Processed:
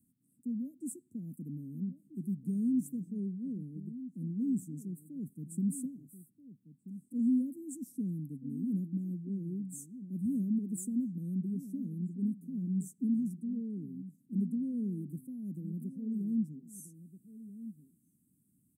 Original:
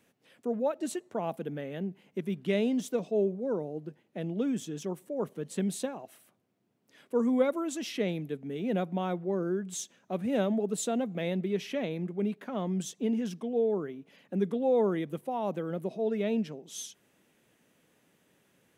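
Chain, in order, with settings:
Chebyshev band-stop filter 270–8,300 Hz, order 4
slap from a distant wall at 220 metres, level −13 dB

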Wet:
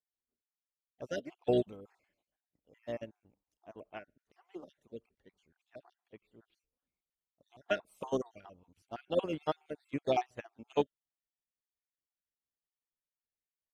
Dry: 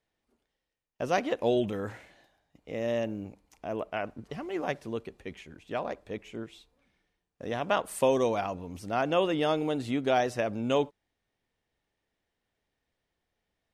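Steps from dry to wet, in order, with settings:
time-frequency cells dropped at random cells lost 45%
pitch-shifted copies added −12 semitones −16 dB, +3 semitones −16 dB
expander for the loud parts 2.5 to 1, over −38 dBFS

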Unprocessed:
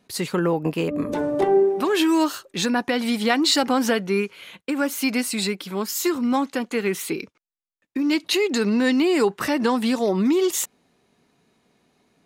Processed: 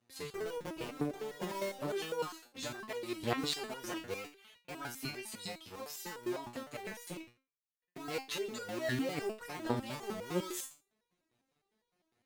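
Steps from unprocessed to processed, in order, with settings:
sub-harmonics by changed cycles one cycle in 2, muted
harmonic generator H 4 −26 dB, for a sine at −4.5 dBFS
step-sequenced resonator 9.9 Hz 120–480 Hz
level −1.5 dB

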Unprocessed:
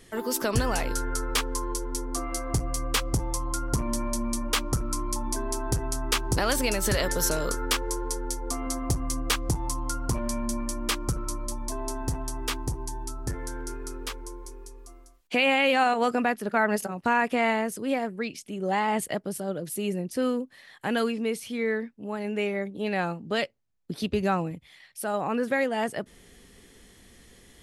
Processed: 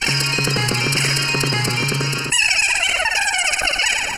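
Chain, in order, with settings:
lower of the sound and its delayed copy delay 1.4 ms
octave-band graphic EQ 125/250/1,000/8,000 Hz +3/−4/+4/−12 dB
noise gate with hold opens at −45 dBFS
Butterworth band-reject 990 Hz, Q 3.2
comb filter 2.7 ms, depth 41%
change of speed 3.57×
on a send: echo with a time of its own for lows and highs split 1,300 Hz, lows 233 ms, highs 108 ms, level −8.5 dB
on the sum: phase-vocoder stretch with locked phases 0.54×
low-pass filter 11,000 Hz 24 dB per octave
low-shelf EQ 490 Hz −11.5 dB
envelope flattener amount 70%
level +6.5 dB

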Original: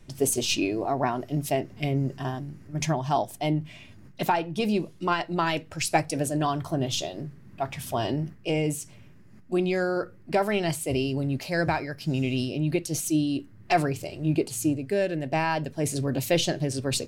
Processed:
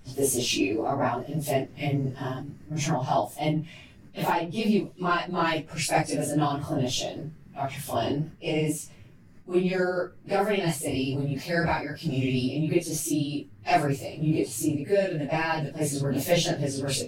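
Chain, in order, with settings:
random phases in long frames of 100 ms

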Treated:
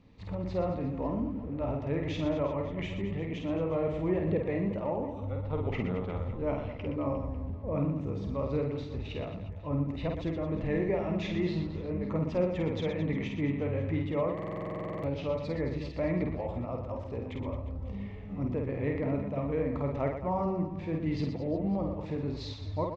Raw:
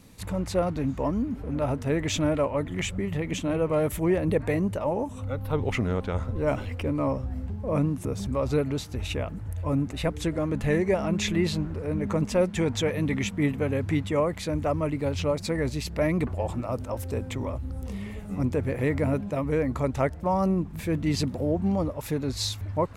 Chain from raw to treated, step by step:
Gaussian smoothing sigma 2.3 samples
parametric band 1,500 Hz −7.5 dB 0.31 octaves
on a send: reverse bouncing-ball delay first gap 50 ms, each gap 1.4×, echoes 5
on the sum: buffer that repeats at 0:14.34, samples 2,048, times 14
level −7 dB

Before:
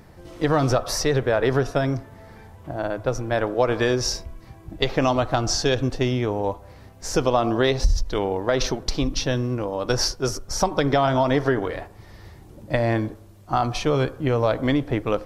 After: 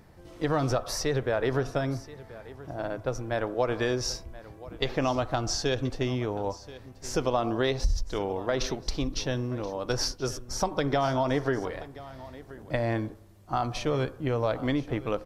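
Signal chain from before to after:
single-tap delay 1,029 ms −18 dB
level −6.5 dB

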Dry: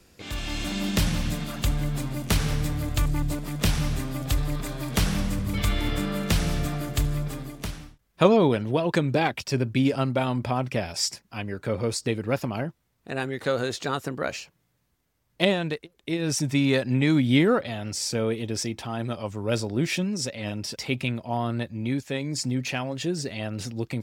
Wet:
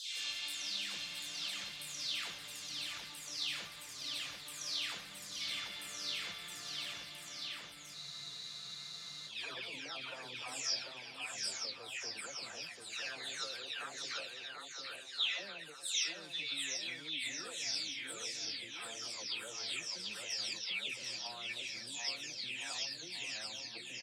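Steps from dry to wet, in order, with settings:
every frequency bin delayed by itself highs early, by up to 487 ms
downward compressor 3 to 1, threshold −32 dBFS, peak gain reduction 14 dB
resonant band-pass 4,100 Hz, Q 1.3
on a send: bouncing-ball delay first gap 740 ms, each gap 0.85×, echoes 5
on the sum: frozen spectrum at 0:07.97, 1.31 s
level +1.5 dB

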